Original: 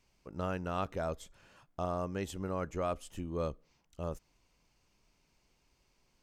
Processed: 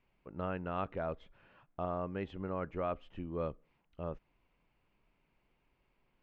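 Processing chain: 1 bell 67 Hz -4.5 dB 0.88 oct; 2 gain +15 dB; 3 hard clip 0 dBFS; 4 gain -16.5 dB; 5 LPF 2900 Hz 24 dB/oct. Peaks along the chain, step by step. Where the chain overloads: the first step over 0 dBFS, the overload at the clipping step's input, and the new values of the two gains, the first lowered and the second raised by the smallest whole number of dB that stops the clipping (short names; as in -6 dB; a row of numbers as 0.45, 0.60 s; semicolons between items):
-20.5, -5.5, -5.5, -22.0, -22.5 dBFS; no overload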